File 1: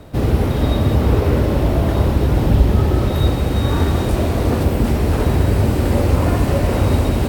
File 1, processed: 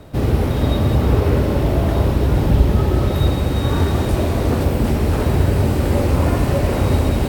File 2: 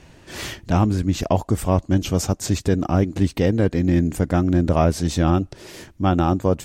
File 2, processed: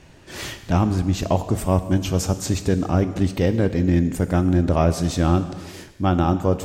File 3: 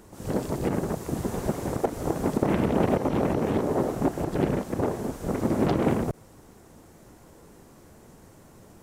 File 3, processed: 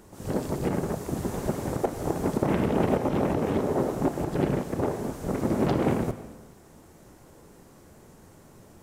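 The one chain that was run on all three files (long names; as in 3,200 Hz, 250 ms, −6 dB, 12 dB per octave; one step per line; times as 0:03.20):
reverb whose tail is shaped and stops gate 470 ms falling, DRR 10 dB
level −1 dB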